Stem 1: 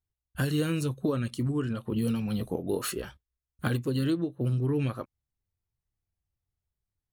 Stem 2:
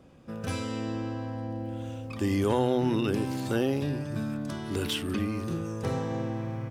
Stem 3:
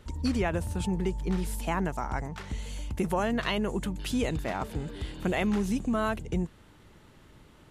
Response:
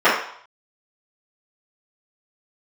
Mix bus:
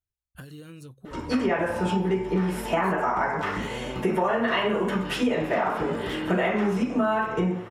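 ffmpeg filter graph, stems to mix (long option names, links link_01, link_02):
-filter_complex "[0:a]acompressor=threshold=-35dB:ratio=12,volume=-5dB[link_01];[1:a]adelay=1200,volume=-12.5dB[link_02];[2:a]adelay=1050,volume=-4dB,asplit=2[link_03][link_04];[link_04]volume=-7dB[link_05];[3:a]atrim=start_sample=2205[link_06];[link_05][link_06]afir=irnorm=-1:irlink=0[link_07];[link_01][link_02][link_03][link_07]amix=inputs=4:normalize=0,acompressor=threshold=-21dB:ratio=6"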